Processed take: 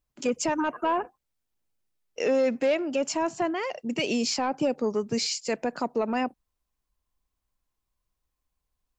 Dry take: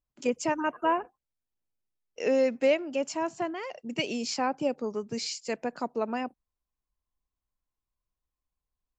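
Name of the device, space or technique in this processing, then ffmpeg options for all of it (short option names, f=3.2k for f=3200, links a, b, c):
soft clipper into limiter: -af "asoftclip=type=tanh:threshold=-17dB,alimiter=limit=-24dB:level=0:latency=1:release=41,volume=6.5dB"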